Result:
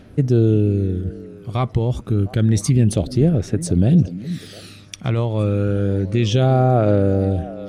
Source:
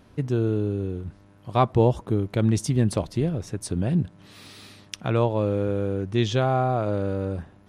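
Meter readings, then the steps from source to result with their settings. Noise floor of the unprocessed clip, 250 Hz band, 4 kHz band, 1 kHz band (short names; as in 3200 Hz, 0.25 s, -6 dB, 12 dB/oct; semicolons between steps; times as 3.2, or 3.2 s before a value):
-53 dBFS, +7.0 dB, +4.0 dB, +0.5 dB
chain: bell 1000 Hz -12 dB 0.46 oct; limiter -16 dBFS, peak gain reduction 8.5 dB; phaser 0.29 Hz, delay 1 ms, feedback 47%; on a send: delay with a stepping band-pass 0.353 s, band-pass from 220 Hz, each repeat 1.4 oct, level -11.5 dB; on the sum: gain +5 dB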